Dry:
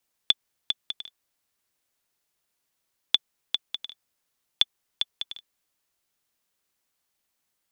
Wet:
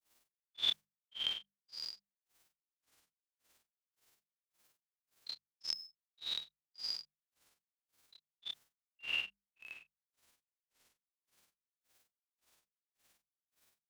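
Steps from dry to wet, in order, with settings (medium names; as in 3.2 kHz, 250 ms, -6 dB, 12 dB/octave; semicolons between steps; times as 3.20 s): spectrogram pixelated in time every 200 ms; granulator 168 ms, grains 3.2 per s, spray 10 ms, pitch spread up and down by 7 st; granular stretch 1.8×, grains 115 ms; hum notches 50/100/150/200 Hz; trim +11.5 dB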